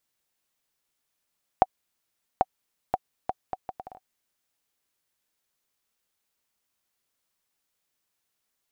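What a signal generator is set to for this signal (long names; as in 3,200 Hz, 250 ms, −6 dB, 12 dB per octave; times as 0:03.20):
bouncing ball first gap 0.79 s, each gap 0.67, 753 Hz, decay 37 ms −4.5 dBFS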